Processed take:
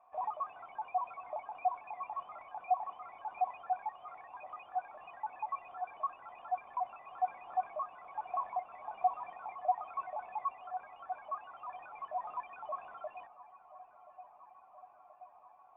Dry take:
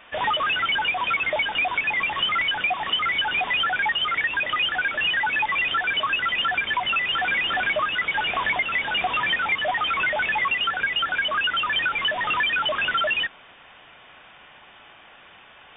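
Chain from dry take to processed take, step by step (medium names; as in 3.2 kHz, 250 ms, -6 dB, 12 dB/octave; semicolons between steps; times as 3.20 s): cascade formant filter a; filtered feedback delay 1028 ms, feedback 83%, low-pass 2 kHz, level -18 dB; trim -2.5 dB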